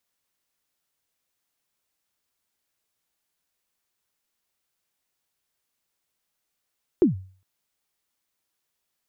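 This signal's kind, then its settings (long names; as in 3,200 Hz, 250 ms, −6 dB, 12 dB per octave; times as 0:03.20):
synth kick length 0.41 s, from 400 Hz, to 94 Hz, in 130 ms, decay 0.43 s, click off, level −10.5 dB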